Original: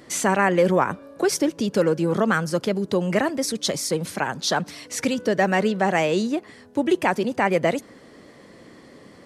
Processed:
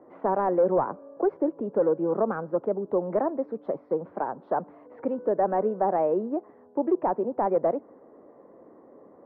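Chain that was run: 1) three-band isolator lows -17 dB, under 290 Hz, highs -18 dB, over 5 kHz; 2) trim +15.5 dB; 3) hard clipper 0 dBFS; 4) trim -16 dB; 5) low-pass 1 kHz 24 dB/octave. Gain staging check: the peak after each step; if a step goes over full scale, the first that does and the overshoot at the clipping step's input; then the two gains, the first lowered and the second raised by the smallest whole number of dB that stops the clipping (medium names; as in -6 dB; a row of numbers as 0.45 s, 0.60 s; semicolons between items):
-7.0 dBFS, +8.5 dBFS, 0.0 dBFS, -16.0 dBFS, -14.0 dBFS; step 2, 8.5 dB; step 2 +6.5 dB, step 4 -7 dB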